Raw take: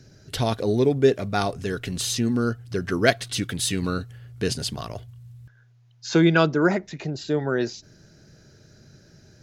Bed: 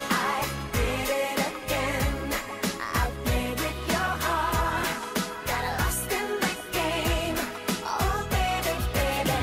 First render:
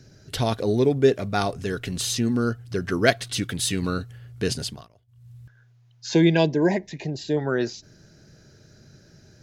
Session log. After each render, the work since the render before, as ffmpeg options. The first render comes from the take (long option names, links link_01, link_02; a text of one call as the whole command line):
ffmpeg -i in.wav -filter_complex "[0:a]asettb=1/sr,asplit=3[link_01][link_02][link_03];[link_01]atrim=end=6.114[link_04];[link_02]atrim=start=6.11:end=7.37,asetpts=PTS-STARTPTS,afade=type=in:duration=0.004:curve=qsin,afade=type=out:start_time=1.256:duration=0.004:curve=qsin,asuperstop=centerf=1300:order=8:qfactor=2.4[link_05];[link_03]atrim=start=7.366[link_06];[link_04][link_05]acrossfade=duration=0.004:curve1=hsin:curve2=qsin[link_07];[link_07][link_06]acrossfade=duration=0.004:curve1=qsin:curve2=hsin,asplit=3[link_08][link_09][link_10];[link_08]atrim=end=4.88,asetpts=PTS-STARTPTS,afade=type=out:start_time=4.59:duration=0.29:silence=0.0630957[link_11];[link_09]atrim=start=4.88:end=5.07,asetpts=PTS-STARTPTS,volume=-24dB[link_12];[link_10]atrim=start=5.07,asetpts=PTS-STARTPTS,afade=type=in:duration=0.29:silence=0.0630957[link_13];[link_11][link_12][link_13]concat=n=3:v=0:a=1" out.wav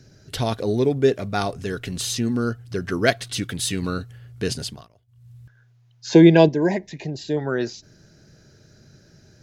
ffmpeg -i in.wav -filter_complex "[0:a]asettb=1/sr,asplit=3[link_01][link_02][link_03];[link_01]atrim=end=6.074[link_04];[link_02]atrim=start=6.07:end=6.49,asetpts=PTS-STARTPTS,afade=type=in:duration=0.004:curve=qsin,afade=type=out:start_time=0.416:duration=0.004:curve=qsin,equalizer=frequency=440:width=0.34:gain=7.5[link_05];[link_03]atrim=start=6.486[link_06];[link_04][link_05]acrossfade=duration=0.004:curve1=hsin:curve2=qsin[link_07];[link_07][link_06]acrossfade=duration=0.004:curve1=qsin:curve2=hsin" out.wav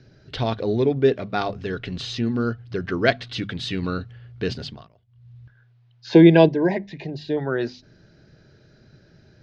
ffmpeg -i in.wav -af "lowpass=frequency=4300:width=0.5412,lowpass=frequency=4300:width=1.3066,bandreject=frequency=50:width_type=h:width=6,bandreject=frequency=100:width_type=h:width=6,bandreject=frequency=150:width_type=h:width=6,bandreject=frequency=200:width_type=h:width=6,bandreject=frequency=250:width_type=h:width=6" out.wav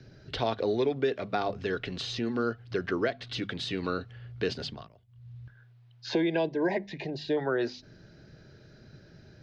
ffmpeg -i in.wav -filter_complex "[0:a]alimiter=limit=-11dB:level=0:latency=1:release=332,acrossover=split=310|890[link_01][link_02][link_03];[link_01]acompressor=threshold=-40dB:ratio=4[link_04];[link_02]acompressor=threshold=-26dB:ratio=4[link_05];[link_03]acompressor=threshold=-34dB:ratio=4[link_06];[link_04][link_05][link_06]amix=inputs=3:normalize=0" out.wav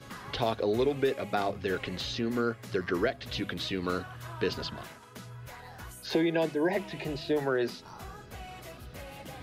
ffmpeg -i in.wav -i bed.wav -filter_complex "[1:a]volume=-19dB[link_01];[0:a][link_01]amix=inputs=2:normalize=0" out.wav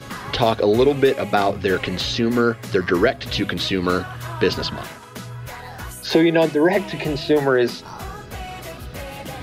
ffmpeg -i in.wav -af "volume=11.5dB" out.wav